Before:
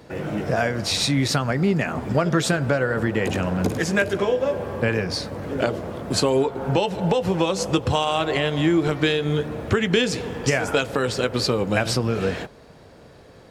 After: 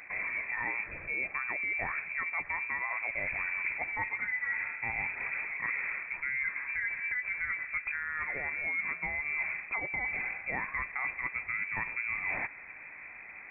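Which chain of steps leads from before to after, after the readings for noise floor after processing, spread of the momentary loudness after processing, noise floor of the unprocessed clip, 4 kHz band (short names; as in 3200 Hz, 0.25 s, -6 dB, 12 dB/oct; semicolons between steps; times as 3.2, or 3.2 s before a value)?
-48 dBFS, 3 LU, -47 dBFS, under -40 dB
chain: reverse; compressor 10:1, threshold -31 dBFS, peak gain reduction 17 dB; reverse; inverted band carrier 2500 Hz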